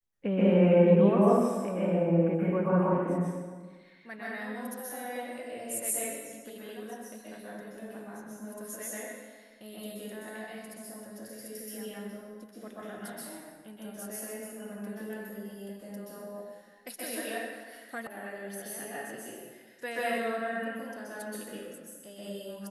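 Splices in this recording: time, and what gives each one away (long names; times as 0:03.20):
0:18.07: cut off before it has died away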